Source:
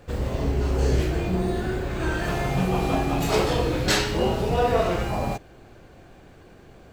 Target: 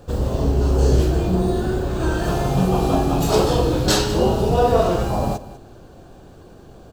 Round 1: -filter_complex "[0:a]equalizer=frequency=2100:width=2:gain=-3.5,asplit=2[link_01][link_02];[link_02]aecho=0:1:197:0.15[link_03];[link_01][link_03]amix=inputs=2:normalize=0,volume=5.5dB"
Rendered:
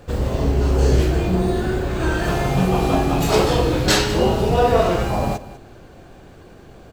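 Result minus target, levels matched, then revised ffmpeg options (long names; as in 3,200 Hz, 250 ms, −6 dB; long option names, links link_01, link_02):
2,000 Hz band +5.0 dB
-filter_complex "[0:a]equalizer=frequency=2100:width=2:gain=-14,asplit=2[link_01][link_02];[link_02]aecho=0:1:197:0.15[link_03];[link_01][link_03]amix=inputs=2:normalize=0,volume=5.5dB"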